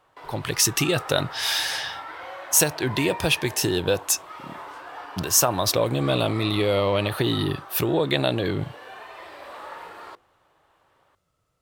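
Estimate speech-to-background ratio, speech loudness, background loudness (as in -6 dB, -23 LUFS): 16.0 dB, -23.0 LUFS, -39.0 LUFS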